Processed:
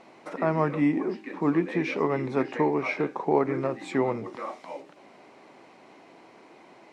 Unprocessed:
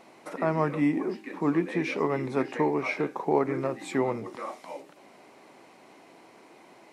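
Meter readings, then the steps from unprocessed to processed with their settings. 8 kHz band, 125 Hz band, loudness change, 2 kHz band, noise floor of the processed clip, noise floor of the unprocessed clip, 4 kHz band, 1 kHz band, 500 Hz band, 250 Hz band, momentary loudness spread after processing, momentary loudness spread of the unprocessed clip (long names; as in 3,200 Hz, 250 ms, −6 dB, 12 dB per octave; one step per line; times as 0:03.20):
can't be measured, +1.5 dB, +1.5 dB, +1.0 dB, −54 dBFS, −55 dBFS, −0.5 dB, +1.0 dB, +1.5 dB, +1.5 dB, 13 LU, 12 LU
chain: high-frequency loss of the air 68 metres
level +1.5 dB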